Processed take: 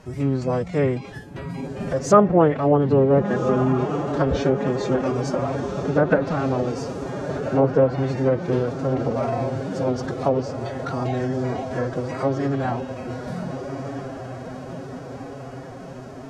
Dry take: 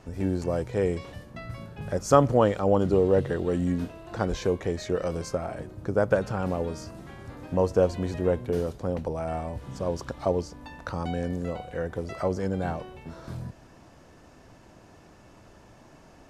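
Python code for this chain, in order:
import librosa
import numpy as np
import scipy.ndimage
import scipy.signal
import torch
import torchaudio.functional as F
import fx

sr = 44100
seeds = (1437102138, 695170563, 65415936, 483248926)

y = fx.echo_diffused(x, sr, ms=1448, feedback_pct=63, wet_db=-8.0)
y = fx.pitch_keep_formants(y, sr, semitones=6.5)
y = fx.env_lowpass_down(y, sr, base_hz=1900.0, full_db=-18.0)
y = y * 10.0 ** (5.0 / 20.0)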